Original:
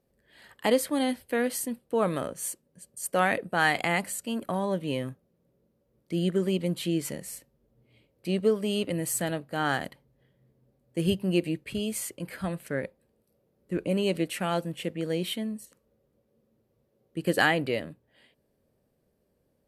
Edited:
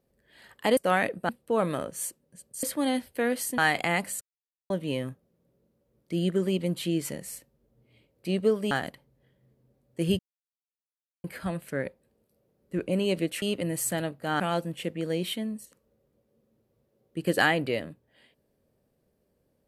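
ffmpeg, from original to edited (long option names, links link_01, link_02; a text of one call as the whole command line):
ffmpeg -i in.wav -filter_complex "[0:a]asplit=12[link_01][link_02][link_03][link_04][link_05][link_06][link_07][link_08][link_09][link_10][link_11][link_12];[link_01]atrim=end=0.772[link_13];[link_02]atrim=start=3.058:end=3.582[link_14];[link_03]atrim=start=1.718:end=3.062[link_15];[link_04]atrim=start=0.768:end=1.722[link_16];[link_05]atrim=start=3.578:end=4.21,asetpts=PTS-STARTPTS,afade=type=out:start_time=0.628:duration=0.004:curve=hsin[link_17];[link_06]atrim=start=4.21:end=4.7,asetpts=PTS-STARTPTS,volume=0[link_18];[link_07]atrim=start=4.7:end=8.712,asetpts=PTS-STARTPTS,afade=type=in:duration=0.004:curve=hsin[link_19];[link_08]atrim=start=9.688:end=11.17,asetpts=PTS-STARTPTS,afade=type=out:start_time=1.478:duration=0.004:curve=hsin[link_20];[link_09]atrim=start=11.17:end=12.22,asetpts=PTS-STARTPTS,volume=0[link_21];[link_10]atrim=start=12.22:end=14.402,asetpts=PTS-STARTPTS,afade=type=in:duration=0.004:curve=hsin[link_22];[link_11]atrim=start=8.708:end=9.692[link_23];[link_12]atrim=start=14.398[link_24];[link_13][link_14]acrossfade=duration=0.004:curve1=hsin:curve2=hsin[link_25];[link_25][link_15]acrossfade=duration=0.004:curve1=hsin:curve2=hsin[link_26];[link_26][link_16]acrossfade=duration=0.004:curve1=hsin:curve2=hsin[link_27];[link_17][link_18][link_19]concat=n=3:v=0:a=1[link_28];[link_27][link_28]acrossfade=duration=0.004:curve1=hsin:curve2=hsin[link_29];[link_20][link_21][link_22]concat=n=3:v=0:a=1[link_30];[link_29][link_30]acrossfade=duration=0.004:curve1=hsin:curve2=hsin[link_31];[link_31][link_23]acrossfade=duration=0.004:curve1=hsin:curve2=hsin[link_32];[link_32][link_24]acrossfade=duration=0.004:curve1=hsin:curve2=hsin" out.wav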